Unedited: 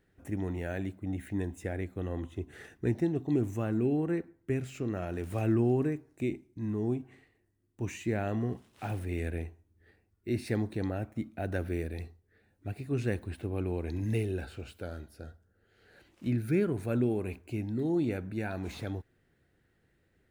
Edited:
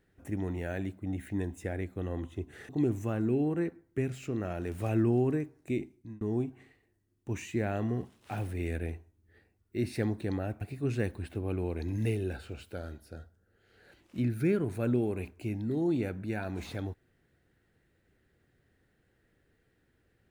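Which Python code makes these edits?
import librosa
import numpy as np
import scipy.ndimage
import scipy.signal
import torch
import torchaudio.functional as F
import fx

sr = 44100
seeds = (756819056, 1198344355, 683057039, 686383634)

y = fx.edit(x, sr, fx.cut(start_s=2.69, length_s=0.52),
    fx.fade_out_span(start_s=6.48, length_s=0.25),
    fx.cut(start_s=11.13, length_s=1.56), tone=tone)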